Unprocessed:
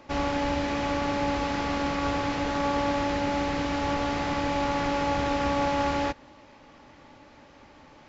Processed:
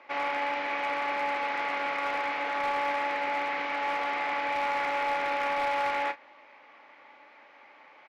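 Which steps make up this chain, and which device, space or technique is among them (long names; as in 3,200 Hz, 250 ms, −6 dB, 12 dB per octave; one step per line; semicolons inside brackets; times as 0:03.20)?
megaphone (band-pass filter 650–2,700 Hz; parametric band 2,200 Hz +8.5 dB 0.36 octaves; hard clipping −23 dBFS, distortion −22 dB; double-tracking delay 34 ms −11.5 dB)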